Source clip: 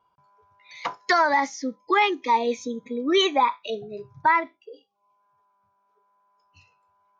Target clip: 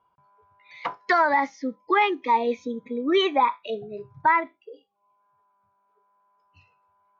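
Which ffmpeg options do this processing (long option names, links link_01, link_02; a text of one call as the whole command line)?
ffmpeg -i in.wav -af "lowpass=2900" out.wav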